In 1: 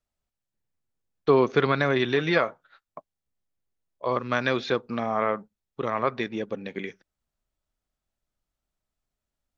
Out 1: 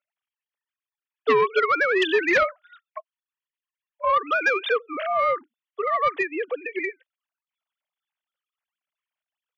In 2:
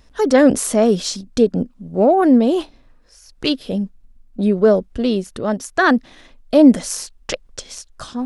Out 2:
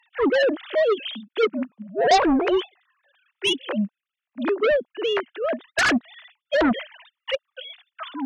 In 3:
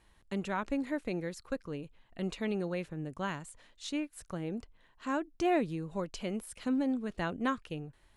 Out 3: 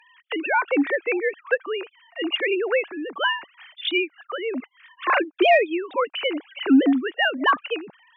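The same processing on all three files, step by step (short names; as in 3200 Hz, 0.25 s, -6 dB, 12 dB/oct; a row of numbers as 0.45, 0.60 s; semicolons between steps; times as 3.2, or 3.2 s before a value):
sine-wave speech; tilt +4 dB/oct; in parallel at -12 dB: sine folder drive 16 dB, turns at -2 dBFS; on the sum: match loudness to -23 LUFS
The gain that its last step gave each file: -4.5, -6.5, +6.0 dB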